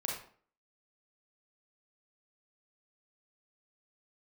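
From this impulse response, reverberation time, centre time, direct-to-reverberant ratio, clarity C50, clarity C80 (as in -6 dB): 0.50 s, 41 ms, -2.5 dB, 2.5 dB, 7.5 dB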